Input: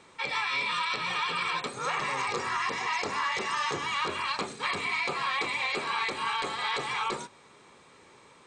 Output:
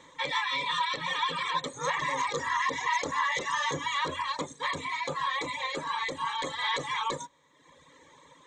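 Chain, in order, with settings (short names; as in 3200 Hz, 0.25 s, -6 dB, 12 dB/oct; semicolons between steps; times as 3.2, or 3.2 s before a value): ripple EQ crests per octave 1.1, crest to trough 12 dB; reverb removal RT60 1.1 s; 4.22–6.42 bell 2600 Hz -4 dB 2 oct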